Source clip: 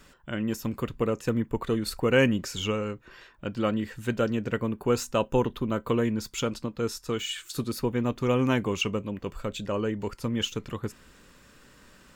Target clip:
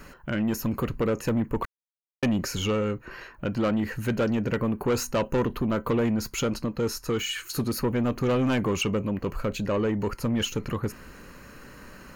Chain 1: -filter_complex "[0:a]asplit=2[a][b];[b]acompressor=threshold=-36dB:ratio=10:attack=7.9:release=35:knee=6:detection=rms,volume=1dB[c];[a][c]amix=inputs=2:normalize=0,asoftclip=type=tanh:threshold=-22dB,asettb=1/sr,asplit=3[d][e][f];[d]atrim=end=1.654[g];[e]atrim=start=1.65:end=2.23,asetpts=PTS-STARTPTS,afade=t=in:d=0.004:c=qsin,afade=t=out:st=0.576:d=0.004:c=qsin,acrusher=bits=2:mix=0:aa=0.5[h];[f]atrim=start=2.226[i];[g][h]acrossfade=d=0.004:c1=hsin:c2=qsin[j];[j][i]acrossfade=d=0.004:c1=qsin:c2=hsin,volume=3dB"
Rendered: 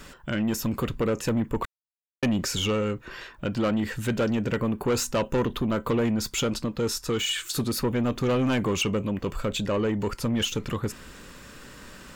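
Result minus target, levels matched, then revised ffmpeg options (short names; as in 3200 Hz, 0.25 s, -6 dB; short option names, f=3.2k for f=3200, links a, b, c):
4000 Hz band +3.5 dB
-filter_complex "[0:a]asplit=2[a][b];[b]acompressor=threshold=-36dB:ratio=10:attack=7.9:release=35:knee=6:detection=rms,asuperstop=centerf=5300:order=20:qfactor=2.7,volume=1dB[c];[a][c]amix=inputs=2:normalize=0,asoftclip=type=tanh:threshold=-22dB,asettb=1/sr,asplit=3[d][e][f];[d]atrim=end=1.654[g];[e]atrim=start=1.65:end=2.23,asetpts=PTS-STARTPTS,afade=t=in:d=0.004:c=qsin,afade=t=out:st=0.576:d=0.004:c=qsin,acrusher=bits=2:mix=0:aa=0.5[h];[f]atrim=start=2.226[i];[g][h]acrossfade=d=0.004:c1=hsin:c2=qsin[j];[j][i]acrossfade=d=0.004:c1=qsin:c2=hsin,volume=3dB"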